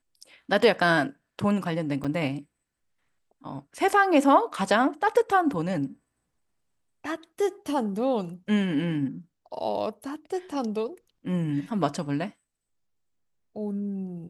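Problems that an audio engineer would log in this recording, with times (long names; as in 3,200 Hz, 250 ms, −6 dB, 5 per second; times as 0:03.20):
0:02.04–0:02.05: drop-out 5.9 ms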